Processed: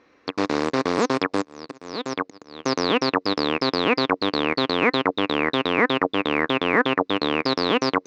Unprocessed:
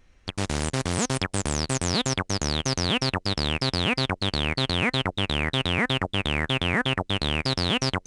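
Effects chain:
in parallel at +1 dB: brickwall limiter −16.5 dBFS, peak gain reduction 8 dB
0:01.39–0:02.63: on the sum: volume swells 788 ms
loudspeaker in its box 270–4,800 Hz, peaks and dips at 290 Hz +9 dB, 460 Hz +8 dB, 1,100 Hz +7 dB, 3,100 Hz −8 dB

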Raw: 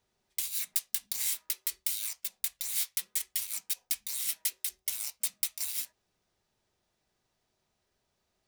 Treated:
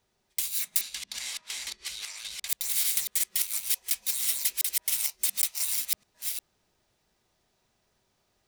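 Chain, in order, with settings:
delay that plays each chunk backwards 355 ms, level −1 dB
0:00.81–0:02.48: low-pass filter 5,200 Hz 12 dB per octave
level +3.5 dB

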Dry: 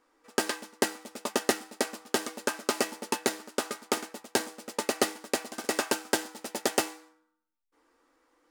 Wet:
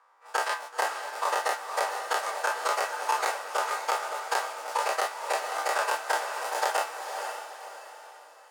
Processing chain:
every bin's largest magnitude spread in time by 60 ms
parametric band 1,000 Hz +14 dB 2.1 octaves
downward compressor, threshold −15 dBFS, peak gain reduction 7.5 dB
high-pass filter 560 Hz 24 dB per octave
feedback delay with all-pass diffusion 510 ms, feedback 41%, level −6.5 dB
level −7 dB

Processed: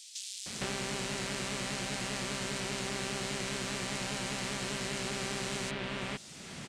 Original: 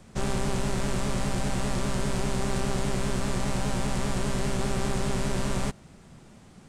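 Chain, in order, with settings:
meter weighting curve D
downward compressor 2.5 to 1, threshold −46 dBFS, peak gain reduction 15.5 dB
multiband delay without the direct sound highs, lows 460 ms, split 3,700 Hz
level +8 dB

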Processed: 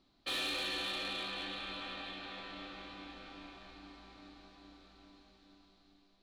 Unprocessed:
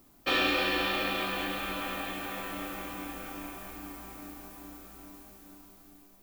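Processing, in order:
transistor ladder low-pass 4,400 Hz, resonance 70%
soft clipping −34 dBFS, distortion −12 dB
level +1.5 dB

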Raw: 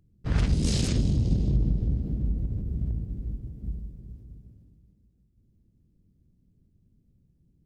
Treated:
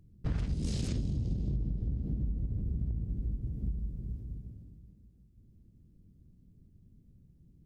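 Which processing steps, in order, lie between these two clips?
low-shelf EQ 440 Hz +5 dB
downward compressor 6 to 1, threshold −30 dBFS, peak gain reduction 15.5 dB

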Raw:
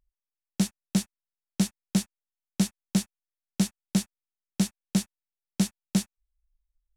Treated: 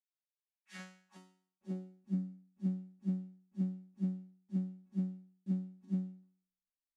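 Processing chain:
reversed piece by piece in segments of 195 ms
band-pass filter sweep 3,800 Hz → 260 Hz, 0:00.30–0:01.91
resonators tuned to a chord F#3 fifth, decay 0.51 s
level +11.5 dB

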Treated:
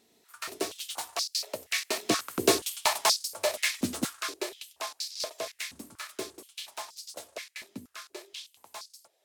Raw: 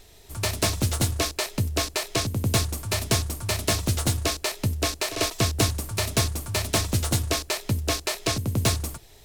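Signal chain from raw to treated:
source passing by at 0:02.66, 10 m/s, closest 5.9 metres
high-pass on a step sequencer 4.2 Hz 240–4,800 Hz

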